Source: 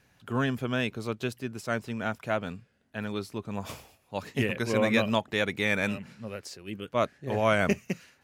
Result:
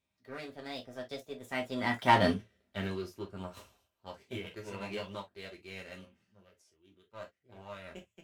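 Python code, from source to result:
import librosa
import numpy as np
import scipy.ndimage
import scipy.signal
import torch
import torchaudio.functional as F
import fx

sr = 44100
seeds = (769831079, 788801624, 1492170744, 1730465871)

y = fx.doppler_pass(x, sr, speed_mps=33, closest_m=4.9, pass_at_s=2.27)
y = fx.high_shelf(y, sr, hz=12000.0, db=-7.0)
y = fx.leveller(y, sr, passes=1)
y = fx.formant_shift(y, sr, semitones=4)
y = fx.rev_gated(y, sr, seeds[0], gate_ms=80, shape='falling', drr_db=0.5)
y = y * 10.0 ** (3.5 / 20.0)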